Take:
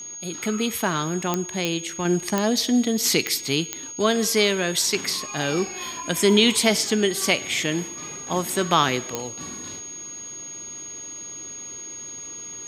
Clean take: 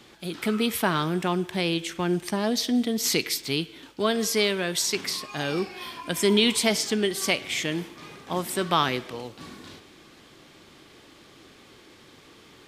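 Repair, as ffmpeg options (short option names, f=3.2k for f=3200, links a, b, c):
-af "adeclick=t=4,bandreject=f=6.6k:w=30,asetnsamples=n=441:p=0,asendcmd='2.05 volume volume -3.5dB',volume=0dB"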